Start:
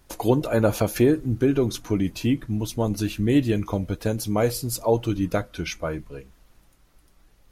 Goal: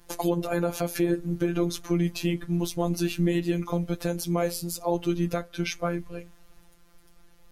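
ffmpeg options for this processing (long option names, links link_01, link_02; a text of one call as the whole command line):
ffmpeg -i in.wav -af "afftfilt=real='hypot(re,im)*cos(PI*b)':imag='0':win_size=1024:overlap=0.75,alimiter=limit=-18dB:level=0:latency=1:release=349,volume=5dB" out.wav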